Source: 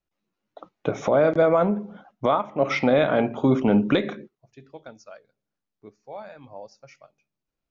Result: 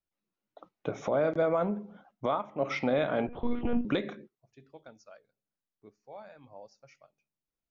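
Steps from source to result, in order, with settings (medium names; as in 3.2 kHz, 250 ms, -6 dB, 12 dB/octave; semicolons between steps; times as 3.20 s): 3.27–3.85 s: monotone LPC vocoder at 8 kHz 240 Hz; trim -8.5 dB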